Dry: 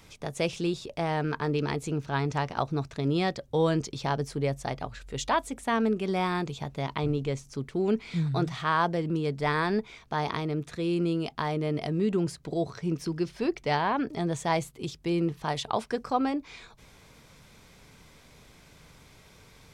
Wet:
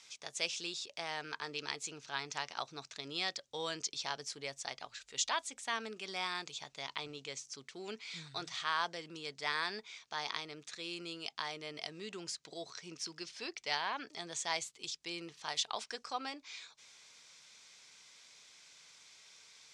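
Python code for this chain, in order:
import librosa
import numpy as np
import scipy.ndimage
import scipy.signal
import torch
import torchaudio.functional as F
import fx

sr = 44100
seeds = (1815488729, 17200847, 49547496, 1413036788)

y = scipy.signal.sosfilt(scipy.signal.butter(4, 6900.0, 'lowpass', fs=sr, output='sos'), x)
y = np.diff(y, prepend=0.0)
y = y * 10.0 ** (6.5 / 20.0)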